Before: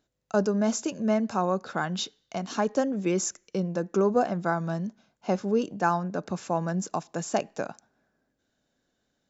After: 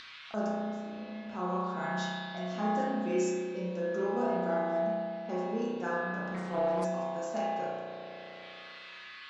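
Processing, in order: 0.47–1.27 s: level held to a coarse grid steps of 20 dB; level-controlled noise filter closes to 1.5 kHz, open at -25.5 dBFS; band noise 1.1–4.4 kHz -55 dBFS; feedback comb 74 Hz, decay 0.5 s, harmonics odd, mix 90%; spring tank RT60 2 s, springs 33 ms, chirp 45 ms, DRR -7.5 dB; upward compressor, threshold -36 dBFS; 6.34–6.85 s: loudspeaker Doppler distortion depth 0.39 ms

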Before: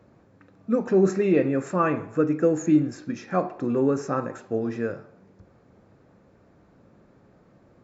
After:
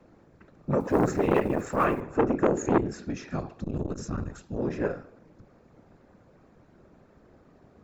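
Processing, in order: 0.80–2.02 s: block-companded coder 7-bit; 3.29–4.57 s: ten-band graphic EQ 125 Hz +10 dB, 250 Hz -6 dB, 500 Hz -11 dB, 1 kHz -8 dB, 2 kHz -7 dB, 4 kHz +4 dB; whisper effect; transformer saturation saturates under 830 Hz

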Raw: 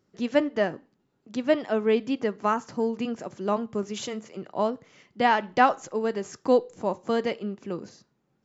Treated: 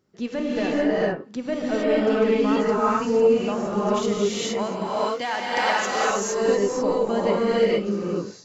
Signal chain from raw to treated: single-diode clipper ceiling -14 dBFS; 0.64–1.49 s: low-pass that closes with the level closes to 2.5 kHz, closed at -30 dBFS; 4.58–6.10 s: tilt EQ +3.5 dB/octave; peak limiter -18 dBFS, peak gain reduction 10.5 dB; gated-style reverb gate 490 ms rising, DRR -8 dB

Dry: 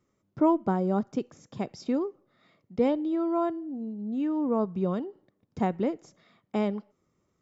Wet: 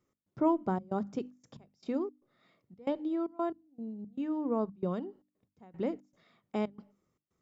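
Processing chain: trance gate "x.xxxx.xxx.x..x" 115 bpm -24 dB; hum notches 50/100/150/200/250/300 Hz; trim -4.5 dB

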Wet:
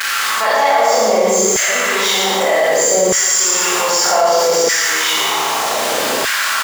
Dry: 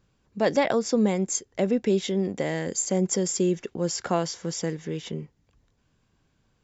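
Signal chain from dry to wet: jump at every zero crossing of -30 dBFS; on a send: delay 113 ms -5.5 dB; on the sum: Schroeder reverb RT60 1.3 s, combs from 28 ms, DRR -9.5 dB; LFO high-pass saw down 0.64 Hz 440–1700 Hz; level flattener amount 70%; trim -4 dB

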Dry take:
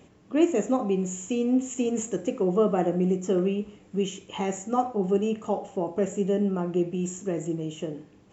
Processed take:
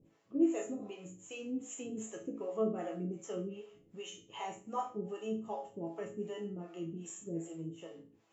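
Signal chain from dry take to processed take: harmonic tremolo 2.6 Hz, depth 100%, crossover 460 Hz; chord resonator A2 major, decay 0.34 s; trim +7 dB

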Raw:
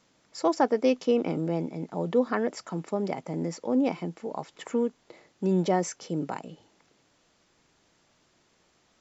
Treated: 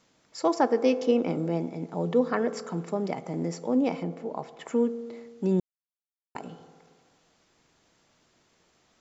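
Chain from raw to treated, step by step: 4.03–4.68 s: treble shelf 4.8 kHz -10 dB; reverberation RT60 1.8 s, pre-delay 3 ms, DRR 13 dB; 5.60–6.35 s: mute

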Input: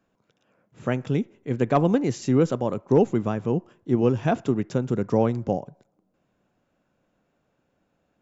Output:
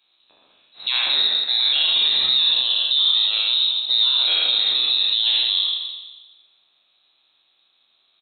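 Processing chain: spectral sustain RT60 1.27 s; loudspeakers at several distances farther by 28 m -5 dB, 45 m -11 dB; frequency inversion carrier 4 kHz; peak limiter -13 dBFS, peak gain reduction 10.5 dB; FFT filter 110 Hz 0 dB, 840 Hz +12 dB, 1.5 kHz +3 dB

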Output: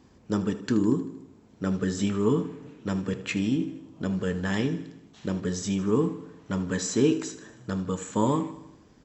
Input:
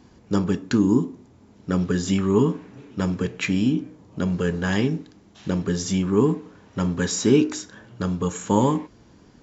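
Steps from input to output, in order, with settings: feedback delay 81 ms, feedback 58%, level -15 dB; speed mistake 24 fps film run at 25 fps; trim -5 dB

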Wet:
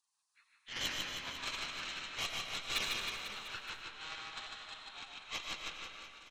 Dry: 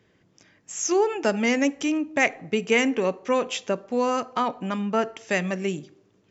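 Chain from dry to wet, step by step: frequency axis rescaled in octaves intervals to 83%; inverse Chebyshev high-pass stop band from 570 Hz, stop band 60 dB; spectral gate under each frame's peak -20 dB weak; Chebyshev shaper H 8 -16 dB, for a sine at -34 dBFS; reverse bouncing-ball echo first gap 150 ms, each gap 1.1×, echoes 5; algorithmic reverb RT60 2.1 s, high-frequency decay 0.5×, pre-delay 60 ms, DRR 3.5 dB; trim +12.5 dB

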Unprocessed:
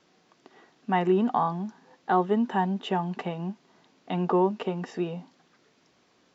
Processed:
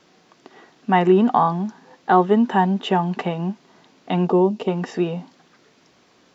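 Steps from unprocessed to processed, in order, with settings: 4.27–4.68 s: peaking EQ 1.5 kHz -12.5 dB 1.6 oct; trim +8 dB

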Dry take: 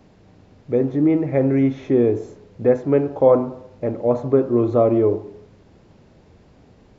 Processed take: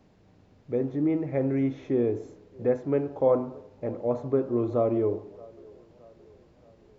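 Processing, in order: feedback echo behind a band-pass 622 ms, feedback 51%, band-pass 710 Hz, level -22 dB; trim -8.5 dB

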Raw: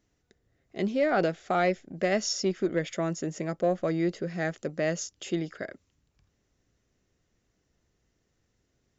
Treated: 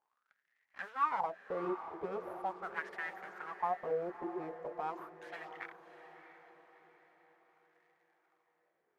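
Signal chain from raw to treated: crackle 190 per s -54 dBFS; full-wave rectifier; modulation noise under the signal 21 dB; wah-wah 0.41 Hz 360–1900 Hz, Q 7.4; on a send: echo that smears into a reverb 661 ms, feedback 45%, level -11 dB; on the sum: trim +6.5 dB

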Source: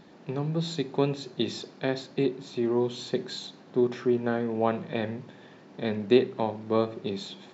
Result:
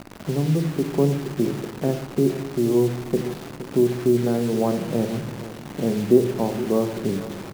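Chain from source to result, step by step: low-pass 1.1 kHz 12 dB/octave; tilt shelf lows +6 dB, about 760 Hz; in parallel at +3 dB: compression 16:1, threshold -34 dBFS, peak gain reduction 24.5 dB; on the sum: word length cut 6-bit, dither none; delay 468 ms -14.5 dB; on a send at -10 dB: reverberation RT60 0.85 s, pre-delay 21 ms

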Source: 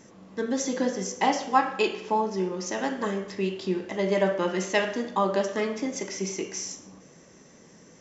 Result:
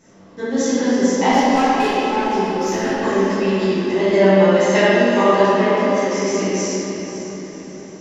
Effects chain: level rider gain up to 4 dB; 1.31–2.98 s: valve stage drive 21 dB, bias 0.25; 5.40–6.11 s: tone controls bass -13 dB, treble -8 dB; echo that smears into a reverb 528 ms, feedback 40%, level -10.5 dB; reverberation RT60 2.8 s, pre-delay 6 ms, DRR -12 dB; trim -5.5 dB

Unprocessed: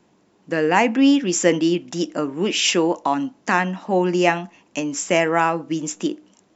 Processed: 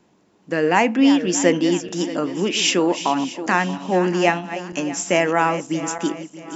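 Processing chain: backward echo that repeats 315 ms, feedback 59%, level -12 dB

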